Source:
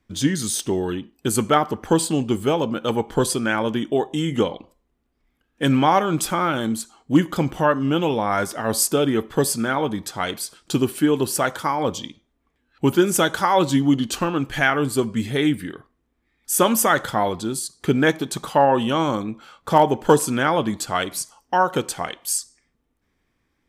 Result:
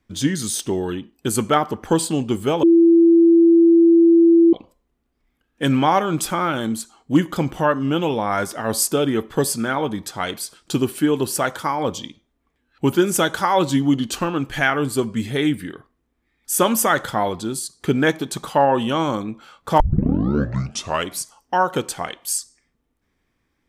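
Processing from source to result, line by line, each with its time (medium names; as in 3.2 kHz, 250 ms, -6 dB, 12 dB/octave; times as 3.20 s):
2.63–4.53 s: bleep 335 Hz -8.5 dBFS
19.80 s: tape start 1.31 s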